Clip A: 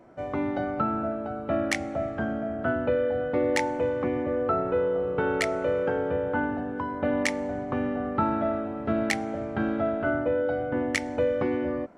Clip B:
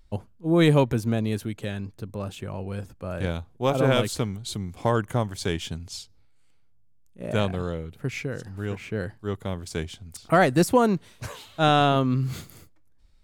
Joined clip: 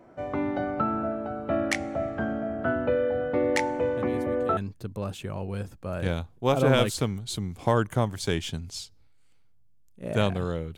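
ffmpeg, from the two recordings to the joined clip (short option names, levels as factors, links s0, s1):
-filter_complex "[1:a]asplit=2[s0][s1];[0:a]apad=whole_dur=10.77,atrim=end=10.77,atrim=end=4.572[s2];[s1]atrim=start=1.748:end=7.95[s3];[s0]atrim=start=1.15:end=1.75,asetpts=PTS-STARTPTS,volume=0.224,afade=t=in:d=0.004:c=hsin,afade=t=out:st=0.596:d=0.004:c=hsin,adelay=175077S[s4];[s2][s3]acrossfade=d=0.004:c1=hsin:c2=hsin[s5];[s5][s4]amix=inputs=2:normalize=0"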